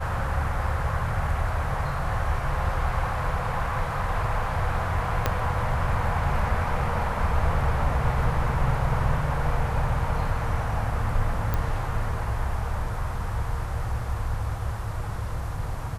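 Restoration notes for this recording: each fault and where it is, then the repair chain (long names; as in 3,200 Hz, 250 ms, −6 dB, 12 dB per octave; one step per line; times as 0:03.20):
0:05.26: click −8 dBFS
0:11.54: click −13 dBFS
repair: click removal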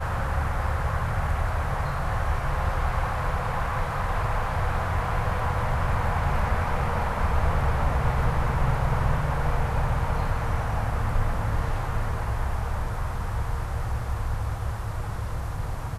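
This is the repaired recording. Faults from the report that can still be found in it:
0:05.26: click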